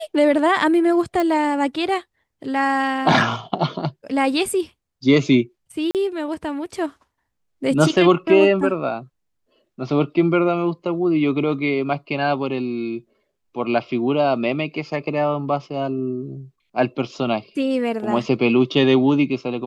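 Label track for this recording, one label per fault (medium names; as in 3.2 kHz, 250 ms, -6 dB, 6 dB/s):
1.200000	1.200000	pop -11 dBFS
5.910000	5.950000	dropout 38 ms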